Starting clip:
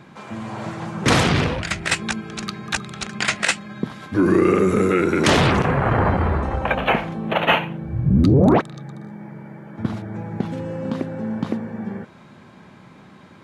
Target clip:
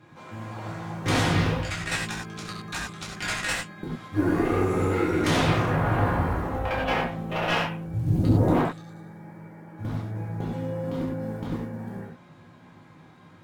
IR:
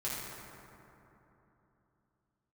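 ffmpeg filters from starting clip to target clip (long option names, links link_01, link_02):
-filter_complex "[0:a]acrusher=bits=8:mode=log:mix=0:aa=0.000001,aeval=exprs='(tanh(4.47*val(0)+0.6)-tanh(0.6))/4.47':channel_layout=same[link_01];[1:a]atrim=start_sample=2205,atrim=end_sample=4410,asetrate=35721,aresample=44100[link_02];[link_01][link_02]afir=irnorm=-1:irlink=0,volume=-6dB"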